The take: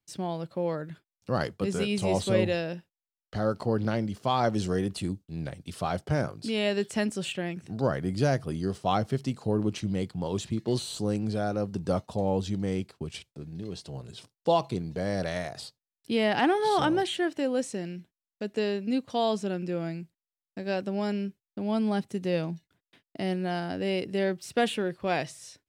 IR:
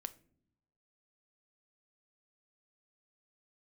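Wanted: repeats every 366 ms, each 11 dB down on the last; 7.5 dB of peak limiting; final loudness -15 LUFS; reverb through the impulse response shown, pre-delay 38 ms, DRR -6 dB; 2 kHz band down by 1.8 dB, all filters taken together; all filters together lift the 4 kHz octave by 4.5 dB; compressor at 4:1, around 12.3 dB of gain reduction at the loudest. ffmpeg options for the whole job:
-filter_complex "[0:a]equalizer=f=2000:t=o:g=-4.5,equalizer=f=4000:t=o:g=7.5,acompressor=threshold=0.0178:ratio=4,alimiter=level_in=1.78:limit=0.0631:level=0:latency=1,volume=0.562,aecho=1:1:366|732|1098:0.282|0.0789|0.0221,asplit=2[s0][s1];[1:a]atrim=start_sample=2205,adelay=38[s2];[s1][s2]afir=irnorm=-1:irlink=0,volume=2.99[s3];[s0][s3]amix=inputs=2:normalize=0,volume=7.08"

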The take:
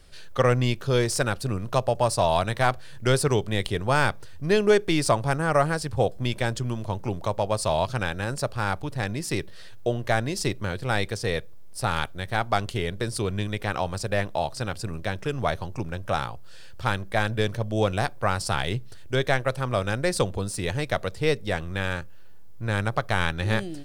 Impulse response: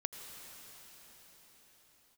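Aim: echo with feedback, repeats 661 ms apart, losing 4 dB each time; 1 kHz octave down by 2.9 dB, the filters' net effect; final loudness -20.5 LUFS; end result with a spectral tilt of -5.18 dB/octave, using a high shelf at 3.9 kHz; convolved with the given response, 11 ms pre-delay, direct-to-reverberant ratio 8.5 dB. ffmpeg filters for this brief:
-filter_complex "[0:a]equalizer=f=1000:t=o:g=-3.5,highshelf=f=3900:g=-7.5,aecho=1:1:661|1322|1983|2644|3305|3966|4627|5288|5949:0.631|0.398|0.25|0.158|0.0994|0.0626|0.0394|0.0249|0.0157,asplit=2[s0][s1];[1:a]atrim=start_sample=2205,adelay=11[s2];[s1][s2]afir=irnorm=-1:irlink=0,volume=0.376[s3];[s0][s3]amix=inputs=2:normalize=0,volume=1.78"

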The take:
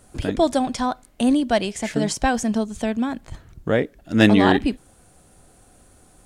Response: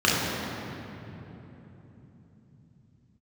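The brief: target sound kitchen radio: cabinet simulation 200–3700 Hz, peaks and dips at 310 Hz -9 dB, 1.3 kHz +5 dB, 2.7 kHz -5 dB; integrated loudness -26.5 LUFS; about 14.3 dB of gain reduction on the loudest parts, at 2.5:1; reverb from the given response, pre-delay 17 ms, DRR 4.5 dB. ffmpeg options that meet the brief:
-filter_complex "[0:a]acompressor=threshold=0.0224:ratio=2.5,asplit=2[s0][s1];[1:a]atrim=start_sample=2205,adelay=17[s2];[s1][s2]afir=irnorm=-1:irlink=0,volume=0.0631[s3];[s0][s3]amix=inputs=2:normalize=0,highpass=200,equalizer=f=310:t=q:w=4:g=-9,equalizer=f=1300:t=q:w=4:g=5,equalizer=f=2700:t=q:w=4:g=-5,lowpass=f=3700:w=0.5412,lowpass=f=3700:w=1.3066,volume=2.24"

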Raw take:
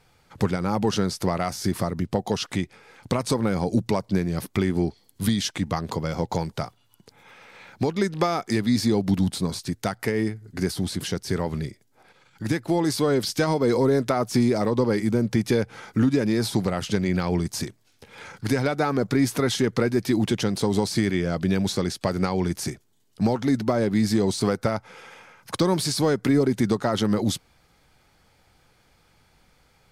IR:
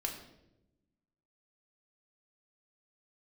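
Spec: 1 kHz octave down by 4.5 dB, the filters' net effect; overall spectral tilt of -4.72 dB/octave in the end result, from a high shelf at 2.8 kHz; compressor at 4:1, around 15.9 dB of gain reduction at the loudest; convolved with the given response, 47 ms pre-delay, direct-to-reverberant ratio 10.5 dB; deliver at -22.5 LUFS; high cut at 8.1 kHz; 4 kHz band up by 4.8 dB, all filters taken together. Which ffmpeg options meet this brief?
-filter_complex "[0:a]lowpass=8100,equalizer=f=1000:t=o:g=-7,highshelf=f=2800:g=3,equalizer=f=4000:t=o:g=4,acompressor=threshold=0.0141:ratio=4,asplit=2[s0][s1];[1:a]atrim=start_sample=2205,adelay=47[s2];[s1][s2]afir=irnorm=-1:irlink=0,volume=0.251[s3];[s0][s3]amix=inputs=2:normalize=0,volume=6.31"

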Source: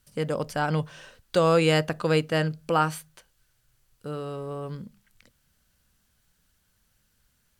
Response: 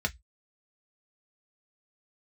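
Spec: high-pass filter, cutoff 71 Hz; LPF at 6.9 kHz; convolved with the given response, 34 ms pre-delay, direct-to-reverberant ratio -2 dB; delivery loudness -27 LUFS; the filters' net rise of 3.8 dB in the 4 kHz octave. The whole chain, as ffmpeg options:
-filter_complex "[0:a]highpass=71,lowpass=6900,equalizer=f=4000:t=o:g=6,asplit=2[s0][s1];[1:a]atrim=start_sample=2205,adelay=34[s2];[s1][s2]afir=irnorm=-1:irlink=0,volume=0.562[s3];[s0][s3]amix=inputs=2:normalize=0,volume=0.562"

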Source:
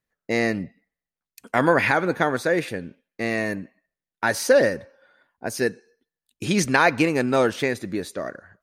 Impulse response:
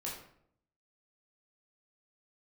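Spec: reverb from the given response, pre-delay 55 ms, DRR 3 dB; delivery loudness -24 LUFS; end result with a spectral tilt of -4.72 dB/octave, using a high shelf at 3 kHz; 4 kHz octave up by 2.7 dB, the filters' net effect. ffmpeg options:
-filter_complex "[0:a]highshelf=f=3000:g=-3.5,equalizer=f=4000:t=o:g=6,asplit=2[s0][s1];[1:a]atrim=start_sample=2205,adelay=55[s2];[s1][s2]afir=irnorm=-1:irlink=0,volume=0.668[s3];[s0][s3]amix=inputs=2:normalize=0,volume=0.708"

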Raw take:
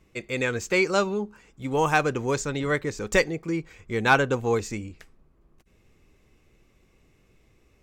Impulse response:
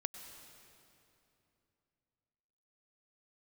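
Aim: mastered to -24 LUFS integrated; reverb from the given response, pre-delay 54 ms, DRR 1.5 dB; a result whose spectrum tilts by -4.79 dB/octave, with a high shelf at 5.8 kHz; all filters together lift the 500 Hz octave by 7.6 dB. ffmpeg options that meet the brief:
-filter_complex "[0:a]equalizer=f=500:t=o:g=9,highshelf=f=5800:g=5.5,asplit=2[s0][s1];[1:a]atrim=start_sample=2205,adelay=54[s2];[s1][s2]afir=irnorm=-1:irlink=0,volume=0.944[s3];[s0][s3]amix=inputs=2:normalize=0,volume=0.531"

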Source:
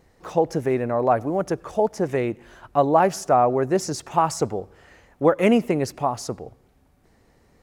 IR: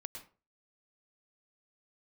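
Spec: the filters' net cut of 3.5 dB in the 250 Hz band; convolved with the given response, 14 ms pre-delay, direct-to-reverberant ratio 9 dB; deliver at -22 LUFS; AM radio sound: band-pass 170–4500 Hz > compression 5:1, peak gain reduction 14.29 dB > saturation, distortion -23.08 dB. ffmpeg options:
-filter_complex "[0:a]equalizer=f=250:t=o:g=-3.5,asplit=2[s0][s1];[1:a]atrim=start_sample=2205,adelay=14[s2];[s1][s2]afir=irnorm=-1:irlink=0,volume=0.501[s3];[s0][s3]amix=inputs=2:normalize=0,highpass=170,lowpass=4500,acompressor=threshold=0.0447:ratio=5,asoftclip=threshold=0.133,volume=3.55"

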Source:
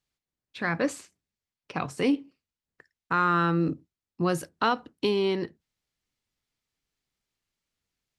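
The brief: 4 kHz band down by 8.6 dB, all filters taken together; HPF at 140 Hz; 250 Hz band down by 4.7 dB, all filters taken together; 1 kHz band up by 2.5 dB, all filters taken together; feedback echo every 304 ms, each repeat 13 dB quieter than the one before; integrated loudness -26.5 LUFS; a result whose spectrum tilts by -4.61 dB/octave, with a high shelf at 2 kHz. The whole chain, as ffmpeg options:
-af "highpass=140,equalizer=f=250:t=o:g=-6.5,equalizer=f=1000:t=o:g=5.5,highshelf=f=2000:g=-4,equalizer=f=4000:t=o:g=-8.5,aecho=1:1:304|608|912:0.224|0.0493|0.0108,volume=1.19"

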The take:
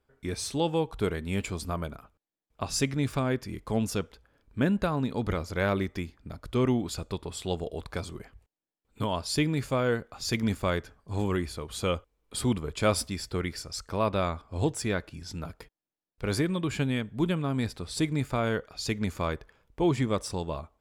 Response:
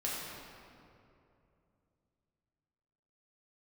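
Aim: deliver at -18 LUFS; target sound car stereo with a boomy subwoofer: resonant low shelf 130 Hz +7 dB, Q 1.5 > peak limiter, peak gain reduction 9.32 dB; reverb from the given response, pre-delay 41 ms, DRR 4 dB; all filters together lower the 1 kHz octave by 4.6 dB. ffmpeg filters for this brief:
-filter_complex "[0:a]equalizer=f=1000:t=o:g=-6,asplit=2[s0][s1];[1:a]atrim=start_sample=2205,adelay=41[s2];[s1][s2]afir=irnorm=-1:irlink=0,volume=0.376[s3];[s0][s3]amix=inputs=2:normalize=0,lowshelf=f=130:t=q:w=1.5:g=7,volume=4.47,alimiter=limit=0.422:level=0:latency=1"

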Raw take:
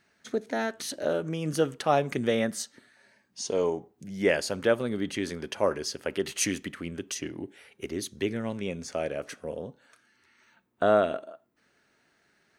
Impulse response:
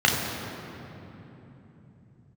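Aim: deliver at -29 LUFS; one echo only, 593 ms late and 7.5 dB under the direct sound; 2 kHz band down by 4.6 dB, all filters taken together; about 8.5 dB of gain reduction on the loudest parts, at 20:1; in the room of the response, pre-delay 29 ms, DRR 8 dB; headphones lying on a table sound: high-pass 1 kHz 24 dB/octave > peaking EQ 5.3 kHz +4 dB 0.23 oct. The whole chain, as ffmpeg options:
-filter_complex "[0:a]equalizer=f=2000:t=o:g=-6,acompressor=threshold=0.0501:ratio=20,aecho=1:1:593:0.422,asplit=2[s0][s1];[1:a]atrim=start_sample=2205,adelay=29[s2];[s1][s2]afir=irnorm=-1:irlink=0,volume=0.0447[s3];[s0][s3]amix=inputs=2:normalize=0,highpass=f=1000:w=0.5412,highpass=f=1000:w=1.3066,equalizer=f=5300:t=o:w=0.23:g=4,volume=3.16"

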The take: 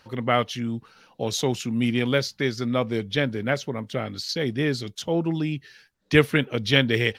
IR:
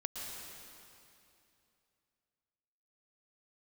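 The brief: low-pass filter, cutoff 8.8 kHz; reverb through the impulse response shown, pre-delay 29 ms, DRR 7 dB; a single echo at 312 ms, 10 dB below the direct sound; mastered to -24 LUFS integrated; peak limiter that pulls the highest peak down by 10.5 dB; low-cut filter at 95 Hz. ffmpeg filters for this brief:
-filter_complex "[0:a]highpass=95,lowpass=8800,alimiter=limit=0.224:level=0:latency=1,aecho=1:1:312:0.316,asplit=2[s0][s1];[1:a]atrim=start_sample=2205,adelay=29[s2];[s1][s2]afir=irnorm=-1:irlink=0,volume=0.398[s3];[s0][s3]amix=inputs=2:normalize=0,volume=1.26"

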